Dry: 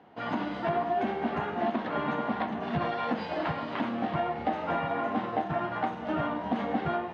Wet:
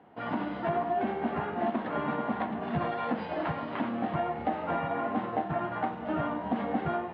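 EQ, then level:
high-frequency loss of the air 250 metres
0.0 dB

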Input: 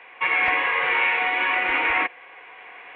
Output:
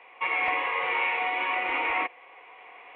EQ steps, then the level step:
low-shelf EQ 300 Hz −11 dB
parametric band 1,600 Hz −12.5 dB 0.37 octaves
high-shelf EQ 3,000 Hz −11 dB
0.0 dB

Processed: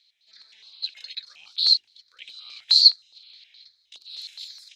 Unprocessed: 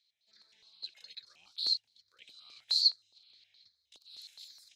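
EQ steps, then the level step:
parametric band 2,900 Hz +14 dB 3 octaves
mains-hum notches 50/100/150/200/250/300/350/400 Hz
0.0 dB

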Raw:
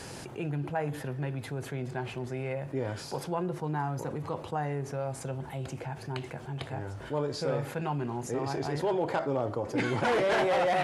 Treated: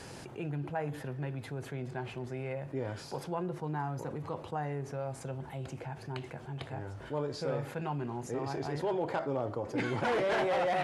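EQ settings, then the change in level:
high-shelf EQ 6,000 Hz −4.5 dB
−3.5 dB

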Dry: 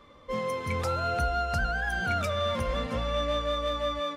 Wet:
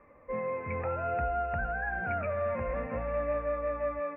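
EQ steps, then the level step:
Chebyshev low-pass with heavy ripple 2,600 Hz, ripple 6 dB
0.0 dB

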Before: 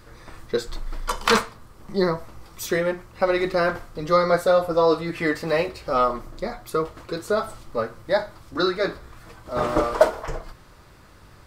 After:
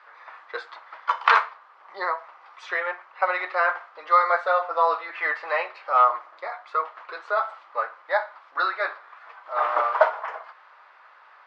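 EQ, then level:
high-pass filter 800 Hz 24 dB per octave
low-pass filter 2,100 Hz 12 dB per octave
high-frequency loss of the air 110 metres
+6.0 dB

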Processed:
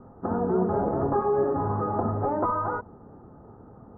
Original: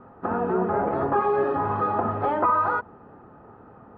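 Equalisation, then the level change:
Bessel low-pass filter 1,100 Hz, order 6
spectral tilt −2 dB per octave
−2.5 dB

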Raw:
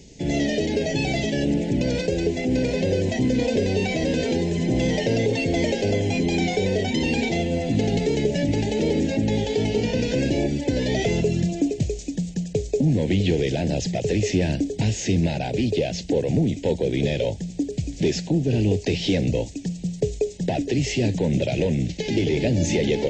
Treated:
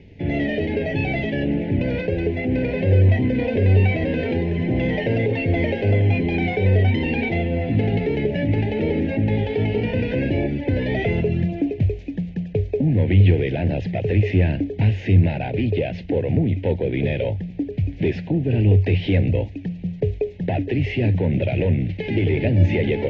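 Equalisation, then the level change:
low-pass with resonance 2,300 Hz, resonance Q 1.8
high-frequency loss of the air 160 metres
parametric band 95 Hz +14.5 dB 0.26 octaves
0.0 dB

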